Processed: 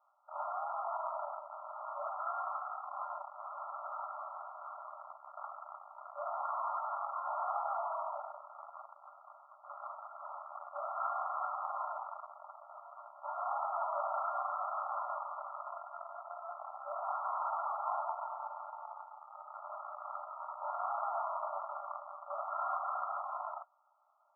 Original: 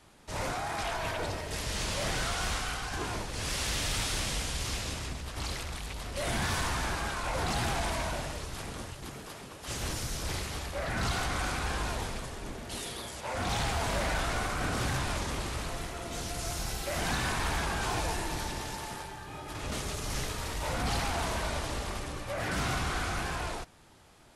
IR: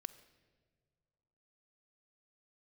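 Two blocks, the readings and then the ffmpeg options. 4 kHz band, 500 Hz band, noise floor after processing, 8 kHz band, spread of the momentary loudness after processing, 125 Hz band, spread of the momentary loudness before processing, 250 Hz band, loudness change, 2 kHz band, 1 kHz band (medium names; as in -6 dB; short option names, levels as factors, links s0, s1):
under -40 dB, -6.5 dB, -59 dBFS, under -40 dB, 14 LU, under -40 dB, 9 LU, under -40 dB, -6.5 dB, under -20 dB, 0.0 dB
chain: -af "aeval=exprs='0.0596*(cos(1*acos(clip(val(0)/0.0596,-1,1)))-cos(1*PI/2))+0.0168*(cos(2*acos(clip(val(0)/0.0596,-1,1)))-cos(2*PI/2))+0.00668*(cos(3*acos(clip(val(0)/0.0596,-1,1)))-cos(3*PI/2))+0.015*(cos(4*acos(clip(val(0)/0.0596,-1,1)))-cos(4*PI/2))+0.00266*(cos(7*acos(clip(val(0)/0.0596,-1,1)))-cos(7*PI/2))':c=same,afftfilt=real='re*between(b*sr/4096,560,1400)':imag='im*between(b*sr/4096,560,1400)':win_size=4096:overlap=0.75,aderivative,volume=7.94"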